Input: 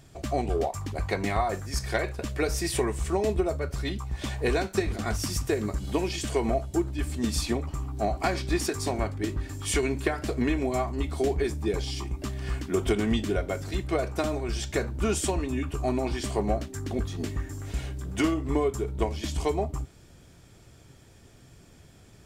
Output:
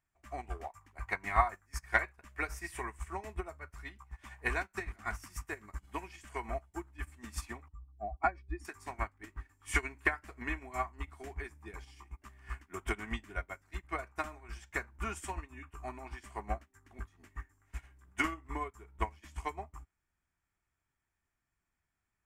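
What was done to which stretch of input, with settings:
0:07.68–0:08.65: expanding power law on the bin magnitudes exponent 1.8
whole clip: octave-band graphic EQ 125/250/500/1,000/2,000/4,000 Hz −10/−4/−12/+7/+8/−11 dB; expander for the loud parts 2.5 to 1, over −42 dBFS; level +1 dB

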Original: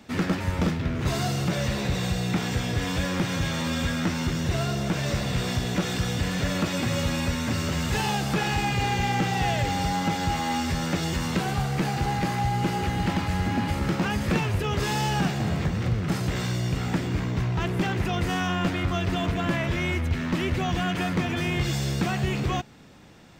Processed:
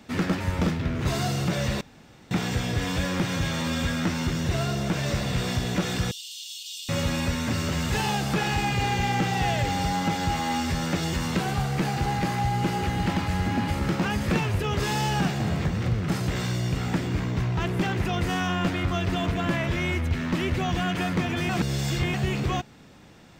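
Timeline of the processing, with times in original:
0:01.81–0:02.31: fill with room tone
0:06.11–0:06.89: Chebyshev high-pass filter 2,900 Hz, order 6
0:21.49–0:22.14: reverse

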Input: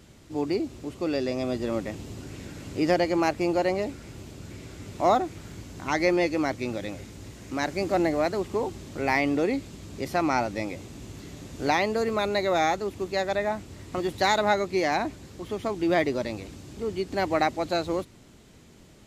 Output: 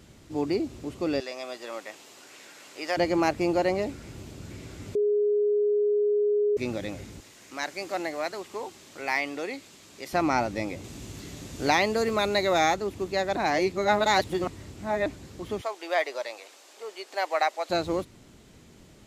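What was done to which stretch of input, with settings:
0:01.20–0:02.97: high-pass filter 770 Hz
0:04.95–0:06.57: beep over 415 Hz −20.5 dBFS
0:07.20–0:10.13: high-pass filter 1,100 Hz 6 dB per octave
0:10.84–0:12.74: high-shelf EQ 2,200 Hz +5 dB
0:13.36–0:15.06: reverse
0:15.61–0:17.70: high-pass filter 550 Hz 24 dB per octave

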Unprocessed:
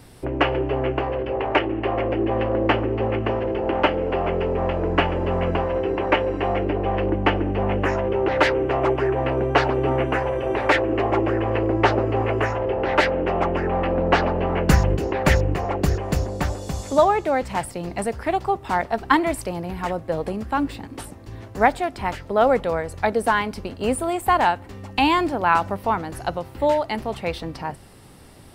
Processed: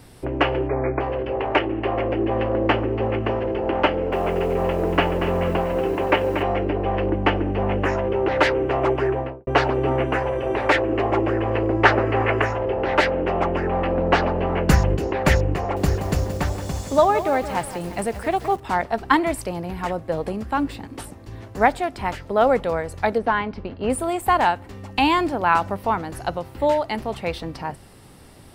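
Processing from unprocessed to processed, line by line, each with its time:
0:00.68–0:01.01: time-frequency box erased 2,500–10,000 Hz
0:03.89–0:06.43: feedback echo at a low word length 235 ms, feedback 35%, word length 7 bits, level −8.5 dB
0:09.07–0:09.47: fade out and dull
0:11.85–0:12.42: parametric band 1,800 Hz +9.5 dB 1.4 octaves
0:15.59–0:18.60: feedback echo at a low word length 174 ms, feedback 55%, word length 6 bits, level −11 dB
0:23.18–0:23.90: high-frequency loss of the air 250 metres

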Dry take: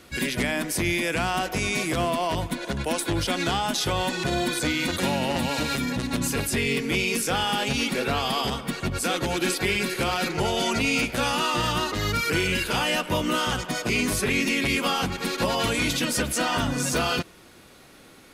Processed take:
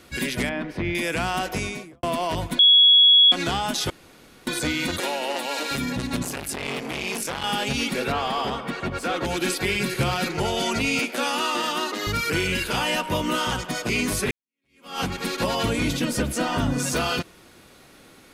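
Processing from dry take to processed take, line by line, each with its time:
0:00.49–0:00.95: high-frequency loss of the air 350 metres
0:01.52–0:02.03: fade out and dull
0:02.59–0:03.32: beep over 3,350 Hz −10.5 dBFS
0:03.90–0:04.47: fill with room tone
0:05.00–0:05.71: high-pass filter 340 Hz 24 dB per octave
0:06.23–0:07.44: saturating transformer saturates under 1,500 Hz
0:08.12–0:09.25: mid-hump overdrive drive 14 dB, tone 1,100 Hz, clips at −13.5 dBFS
0:09.80–0:10.25: parametric band 120 Hz +12 dB
0:10.99–0:12.07: Butterworth high-pass 220 Hz
0:12.73–0:13.57: steady tone 940 Hz −33 dBFS
0:14.31–0:15.00: fade in exponential
0:15.63–0:16.79: tilt shelving filter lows +4 dB, about 760 Hz

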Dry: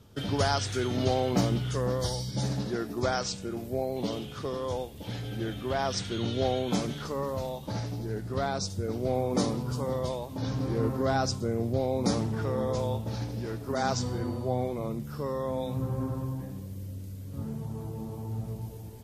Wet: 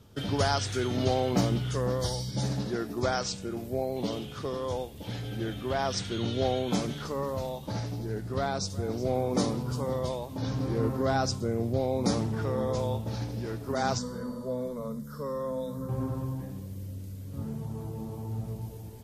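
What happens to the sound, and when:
0:08.35–0:09.02: delay throw 370 ms, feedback 40%, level −16.5 dB
0:13.98–0:15.89: phaser with its sweep stopped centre 510 Hz, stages 8

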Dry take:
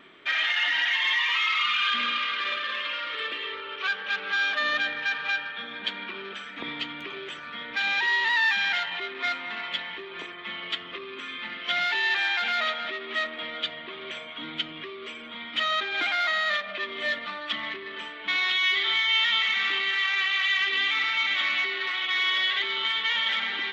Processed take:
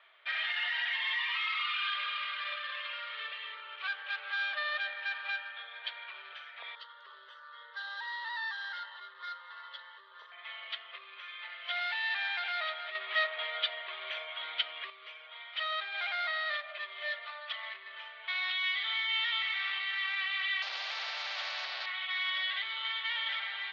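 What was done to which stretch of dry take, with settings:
0:06.75–0:10.32: phaser with its sweep stopped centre 480 Hz, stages 8
0:12.95–0:14.90: clip gain +7 dB
0:20.62–0:21.86: every bin compressed towards the loudest bin 4 to 1
whole clip: elliptic band-pass filter 610–4,600 Hz, stop band 40 dB; level −8 dB

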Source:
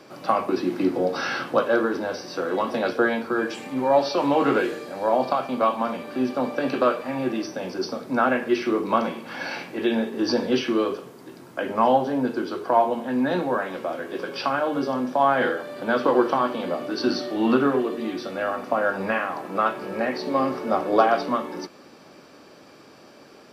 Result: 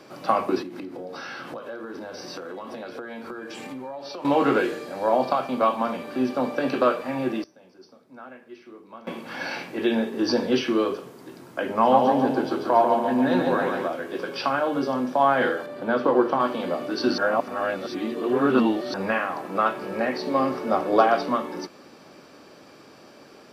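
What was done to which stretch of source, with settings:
0:00.62–0:04.25: downward compressor 12 to 1, threshold −32 dBFS
0:07.06–0:09.45: duck −22 dB, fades 0.38 s logarithmic
0:11.72–0:13.88: repeating echo 142 ms, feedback 51%, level −4.5 dB
0:15.66–0:16.40: high-shelf EQ 2,100 Hz −8 dB
0:17.18–0:18.94: reverse

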